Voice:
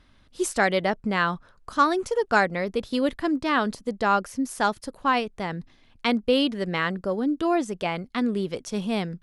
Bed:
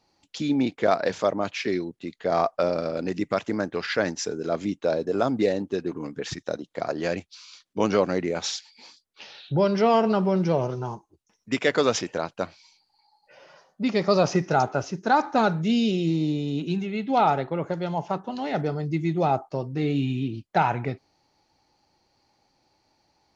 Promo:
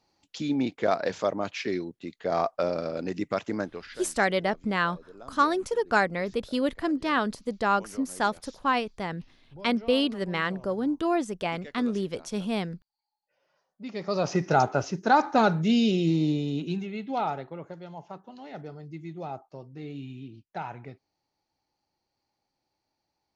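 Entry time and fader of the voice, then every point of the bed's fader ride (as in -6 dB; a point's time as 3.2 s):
3.60 s, -2.5 dB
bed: 3.62 s -3.5 dB
4.07 s -23.5 dB
13.39 s -23.5 dB
14.51 s 0 dB
16.31 s 0 dB
17.85 s -14 dB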